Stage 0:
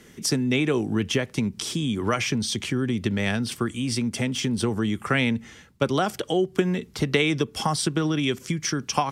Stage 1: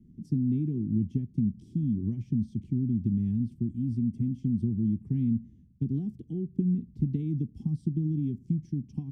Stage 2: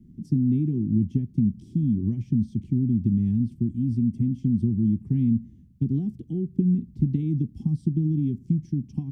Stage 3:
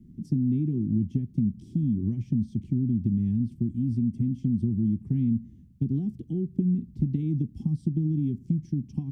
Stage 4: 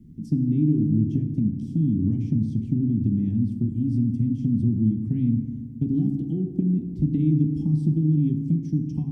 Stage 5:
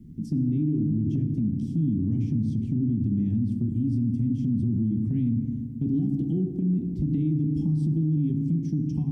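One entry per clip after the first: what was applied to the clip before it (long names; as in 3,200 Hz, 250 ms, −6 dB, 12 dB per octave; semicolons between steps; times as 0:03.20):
inverse Chebyshev low-pass filter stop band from 510 Hz, stop band 40 dB
notch filter 440 Hz, Q 12; level +5 dB
downward compressor 1.5 to 1, threshold −26 dBFS, peak gain reduction 4 dB
feedback delay network reverb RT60 2.3 s, low-frequency decay 0.9×, high-frequency decay 0.3×, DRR 5 dB; level +2.5 dB
brickwall limiter −20 dBFS, peak gain reduction 9.5 dB; level +2 dB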